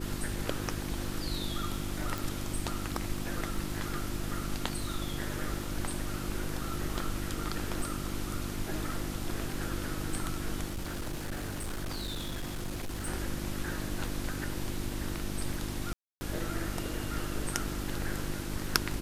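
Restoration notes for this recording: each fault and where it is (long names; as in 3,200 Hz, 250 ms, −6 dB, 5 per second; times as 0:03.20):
surface crackle 21 per second −39 dBFS
mains hum 50 Hz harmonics 7 −39 dBFS
0:02.18: click
0:10.66–0:13.08: clipping −32 dBFS
0:15.93–0:16.21: drop-out 280 ms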